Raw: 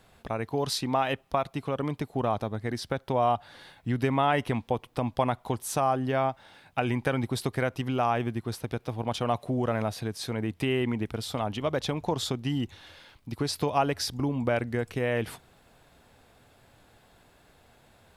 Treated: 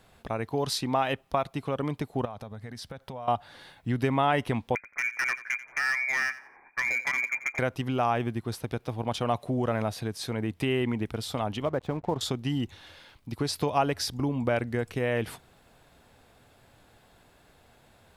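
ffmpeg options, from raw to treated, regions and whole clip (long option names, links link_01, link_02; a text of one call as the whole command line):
ffmpeg -i in.wav -filter_complex "[0:a]asettb=1/sr,asplit=3[link_01][link_02][link_03];[link_01]atrim=end=2.254[link_04];[link_02]atrim=start=2.25:end=3.28,asetpts=PTS-STARTPTS,afade=type=in:duration=0.004:curve=qsin,afade=type=out:start_time=1.026:duration=0.004:curve=qsin,equalizer=frequency=340:width=5.5:gain=-14.5,acompressor=threshold=-36dB:ratio=6:attack=3.2:release=140:knee=1:detection=peak[link_05];[link_03]atrim=start=3.276[link_06];[link_04][link_05]acrossfade=duration=0.004:curve1=hsin:curve2=qsin[link_07];[link_07][link_06]acrossfade=duration=0.004:curve1=qsin:curve2=hsin,asettb=1/sr,asplit=3[link_08][link_09][link_10];[link_08]atrim=end=4.754[link_11];[link_09]atrim=start=4.75:end=7.59,asetpts=PTS-STARTPTS,afade=type=in:duration=0.004:curve=qsin,afade=type=out:start_time=2.836:duration=0.004:curve=qsin,lowpass=frequency=2100:width_type=q:width=0.5098,lowpass=frequency=2100:width_type=q:width=0.6013,lowpass=frequency=2100:width_type=q:width=0.9,lowpass=frequency=2100:width_type=q:width=2.563,afreqshift=-2500,asoftclip=type=hard:threshold=-22.5dB,aecho=1:1:88|176|264:0.168|0.0436|0.0113,atrim=end_sample=125244[link_12];[link_10]atrim=start=7.586[link_13];[link_11][link_12]acrossfade=duration=0.004:curve1=hsin:curve2=qsin[link_14];[link_14][link_13]acrossfade=duration=0.004:curve1=qsin:curve2=hsin,asettb=1/sr,asplit=3[link_15][link_16][link_17];[link_15]atrim=end=11.654[link_18];[link_16]atrim=start=11.65:end=12.21,asetpts=PTS-STARTPTS,afade=type=in:duration=0.004:curve=qsin,afade=type=out:start_time=0.556:duration=0.004:curve=qsin,lowpass=1500,aeval=exprs='sgn(val(0))*max(abs(val(0))-0.00299,0)':channel_layout=same[link_19];[link_17]atrim=start=12.206[link_20];[link_18][link_19]acrossfade=duration=0.004:curve1=hsin:curve2=qsin[link_21];[link_21][link_20]acrossfade=duration=0.004:curve1=qsin:curve2=hsin" out.wav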